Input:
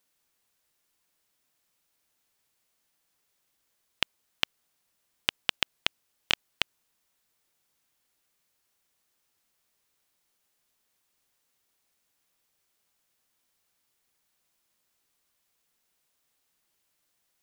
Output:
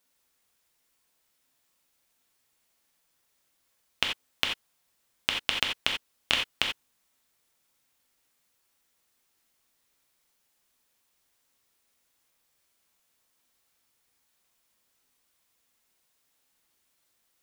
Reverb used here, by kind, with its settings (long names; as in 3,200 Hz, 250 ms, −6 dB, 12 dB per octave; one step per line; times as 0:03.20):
reverb whose tail is shaped and stops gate 110 ms flat, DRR 0.5 dB